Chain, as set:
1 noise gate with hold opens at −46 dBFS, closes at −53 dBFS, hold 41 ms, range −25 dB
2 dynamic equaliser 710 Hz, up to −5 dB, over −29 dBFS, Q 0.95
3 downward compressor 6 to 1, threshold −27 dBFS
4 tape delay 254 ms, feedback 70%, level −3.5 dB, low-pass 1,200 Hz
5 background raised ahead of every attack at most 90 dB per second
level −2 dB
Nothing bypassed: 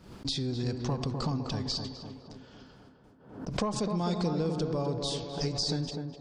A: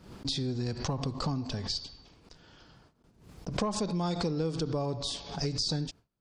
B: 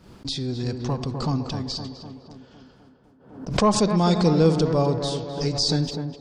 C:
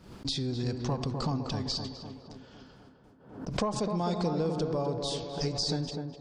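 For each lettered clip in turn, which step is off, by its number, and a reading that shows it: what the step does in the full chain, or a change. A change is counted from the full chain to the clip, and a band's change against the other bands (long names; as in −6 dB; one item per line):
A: 4, change in momentary loudness spread −10 LU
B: 3, change in momentary loudness spread −2 LU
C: 2, 1 kHz band +2.0 dB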